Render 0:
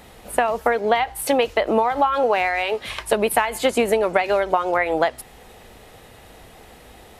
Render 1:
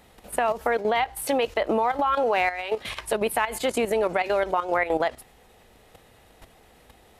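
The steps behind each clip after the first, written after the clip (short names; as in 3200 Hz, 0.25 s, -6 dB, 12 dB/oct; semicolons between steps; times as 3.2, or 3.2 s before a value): level quantiser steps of 11 dB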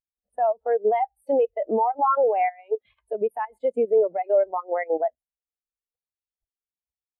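spectral expander 2.5:1; gain -3.5 dB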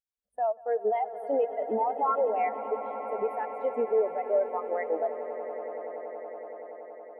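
swelling echo 94 ms, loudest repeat 8, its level -17.5 dB; gain -6 dB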